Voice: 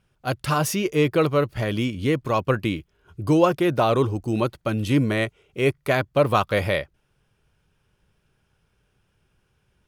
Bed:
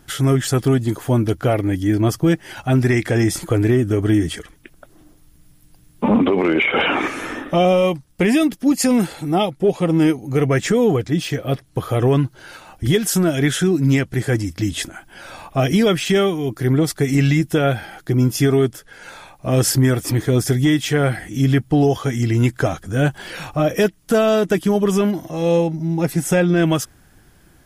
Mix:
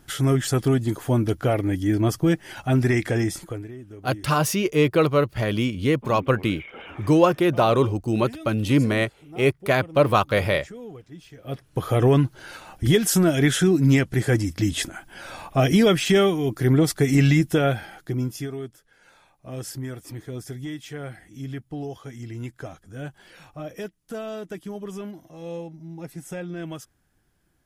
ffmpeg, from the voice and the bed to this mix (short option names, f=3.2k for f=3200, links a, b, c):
-filter_complex "[0:a]adelay=3800,volume=1dB[a];[1:a]volume=18dB,afade=t=out:st=3.05:d=0.63:silence=0.105925,afade=t=in:st=11.36:d=0.54:silence=0.0794328,afade=t=out:st=17.37:d=1.14:silence=0.158489[b];[a][b]amix=inputs=2:normalize=0"